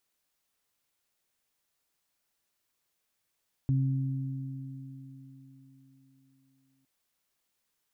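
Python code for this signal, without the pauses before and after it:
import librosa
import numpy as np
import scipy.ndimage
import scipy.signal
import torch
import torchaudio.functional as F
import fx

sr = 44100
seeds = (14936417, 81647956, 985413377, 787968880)

y = fx.additive(sr, length_s=3.16, hz=134.0, level_db=-22.5, upper_db=(-10.0,), decay_s=3.59, upper_decays_s=(4.92,))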